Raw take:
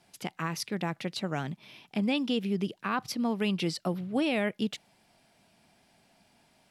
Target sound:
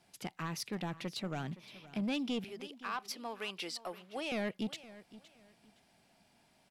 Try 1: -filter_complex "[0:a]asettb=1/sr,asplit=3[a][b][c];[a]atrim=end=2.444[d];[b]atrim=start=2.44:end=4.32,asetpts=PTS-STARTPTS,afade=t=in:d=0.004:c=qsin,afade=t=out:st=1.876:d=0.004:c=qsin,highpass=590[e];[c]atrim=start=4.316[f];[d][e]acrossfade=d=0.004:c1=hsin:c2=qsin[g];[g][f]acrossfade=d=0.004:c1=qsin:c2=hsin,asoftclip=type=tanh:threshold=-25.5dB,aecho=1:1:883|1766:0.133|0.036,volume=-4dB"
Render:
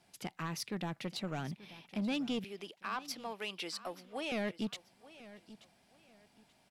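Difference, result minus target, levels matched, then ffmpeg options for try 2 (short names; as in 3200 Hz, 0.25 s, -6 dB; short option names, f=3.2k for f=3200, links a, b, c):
echo 0.366 s late
-filter_complex "[0:a]asettb=1/sr,asplit=3[a][b][c];[a]atrim=end=2.444[d];[b]atrim=start=2.44:end=4.32,asetpts=PTS-STARTPTS,afade=t=in:d=0.004:c=qsin,afade=t=out:st=1.876:d=0.004:c=qsin,highpass=590[e];[c]atrim=start=4.316[f];[d][e]acrossfade=d=0.004:c1=hsin:c2=qsin[g];[g][f]acrossfade=d=0.004:c1=qsin:c2=hsin,asoftclip=type=tanh:threshold=-25.5dB,aecho=1:1:517|1034:0.133|0.036,volume=-4dB"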